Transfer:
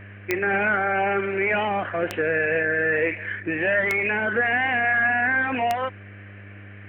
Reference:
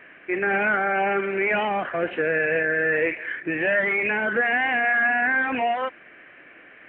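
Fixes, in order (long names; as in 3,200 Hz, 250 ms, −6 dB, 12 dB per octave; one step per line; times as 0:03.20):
click removal
hum removal 100.5 Hz, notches 6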